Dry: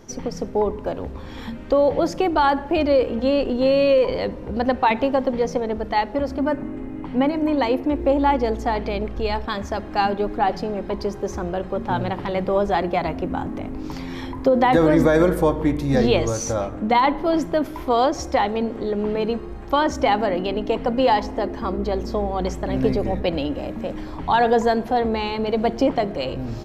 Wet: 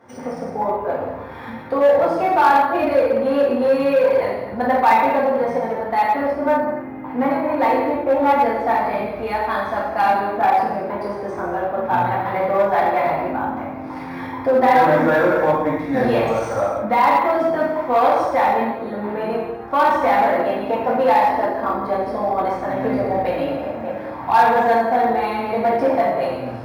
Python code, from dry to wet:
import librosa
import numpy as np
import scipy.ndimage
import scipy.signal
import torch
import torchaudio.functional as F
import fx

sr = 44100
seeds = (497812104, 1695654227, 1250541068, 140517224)

p1 = scipy.ndimage.median_filter(x, 5, mode='constant')
p2 = fx.band_shelf(p1, sr, hz=1100.0, db=9.5, octaves=2.3)
p3 = fx.rev_gated(p2, sr, seeds[0], gate_ms=350, shape='falling', drr_db=-7.5)
p4 = 10.0 ** (-3.5 / 20.0) * (np.abs((p3 / 10.0 ** (-3.5 / 20.0) + 3.0) % 4.0 - 2.0) - 1.0)
p5 = p3 + (p4 * librosa.db_to_amplitude(-8.0))
p6 = scipy.signal.sosfilt(scipy.signal.butter(4, 88.0, 'highpass', fs=sr, output='sos'), p5)
p7 = fx.high_shelf(p6, sr, hz=6300.0, db=-5.5)
p8 = fx.notch(p7, sr, hz=3000.0, q=11.0)
p9 = np.interp(np.arange(len(p8)), np.arange(len(p8))[::3], p8[::3])
y = p9 * librosa.db_to_amplitude(-13.0)